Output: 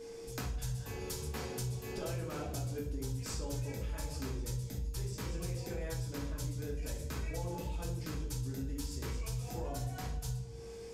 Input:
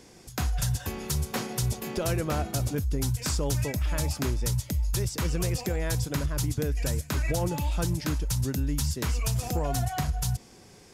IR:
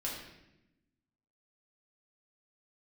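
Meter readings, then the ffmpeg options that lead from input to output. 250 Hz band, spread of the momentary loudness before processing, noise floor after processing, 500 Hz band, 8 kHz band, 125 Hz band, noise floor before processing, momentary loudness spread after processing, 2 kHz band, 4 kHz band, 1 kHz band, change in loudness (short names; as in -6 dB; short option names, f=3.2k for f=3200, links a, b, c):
-10.5 dB, 2 LU, -46 dBFS, -8.5 dB, -12.0 dB, -10.0 dB, -52 dBFS, 2 LU, -11.0 dB, -11.0 dB, -11.5 dB, -10.5 dB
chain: -filter_complex "[1:a]atrim=start_sample=2205,asetrate=70560,aresample=44100[a];[0:a][a]afir=irnorm=-1:irlink=0,aeval=exprs='val(0)+0.00562*sin(2*PI*460*n/s)':c=same,acompressor=threshold=-39dB:ratio=3"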